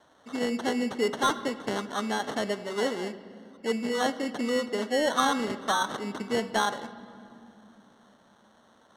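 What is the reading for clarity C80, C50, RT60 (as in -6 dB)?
14.5 dB, 13.5 dB, 2.8 s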